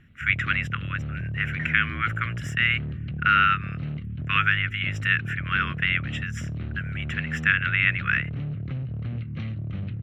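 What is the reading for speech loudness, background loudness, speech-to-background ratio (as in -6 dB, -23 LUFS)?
-24.5 LUFS, -32.5 LUFS, 8.0 dB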